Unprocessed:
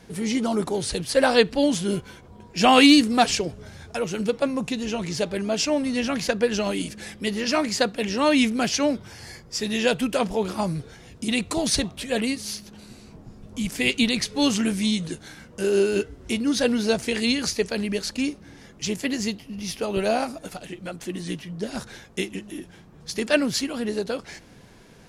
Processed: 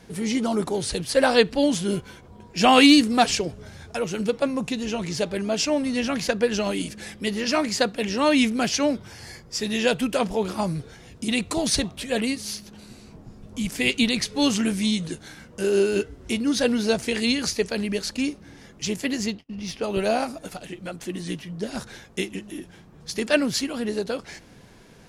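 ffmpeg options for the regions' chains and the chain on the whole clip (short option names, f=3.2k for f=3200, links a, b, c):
-filter_complex "[0:a]asettb=1/sr,asplit=3[a][b][c];[a]atrim=end=19.264[d];[b]atrim=start=19.26:end=19.84,asetpts=PTS-STARTPTS,afade=t=in:d=0.004:c=qsin,afade=t=out:st=0.576:d=0.004:c=qsin,agate=range=-33dB:threshold=-43dB:ratio=16:release=100:detection=peak,adynamicsmooth=sensitivity=2:basefreq=6.1k[e];[c]atrim=start=19.836[f];[d][e]acrossfade=d=0.004:c1=hsin:c2=qsin[g];[g][f]acrossfade=d=0.004:c1=qsin:c2=hsin"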